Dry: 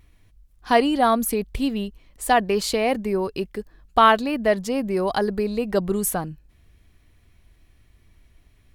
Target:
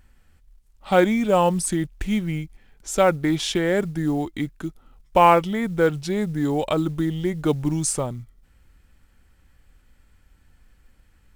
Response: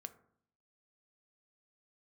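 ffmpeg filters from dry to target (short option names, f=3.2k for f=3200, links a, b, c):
-af "asetrate=33957,aresample=44100,acrusher=bits=8:mode=log:mix=0:aa=0.000001"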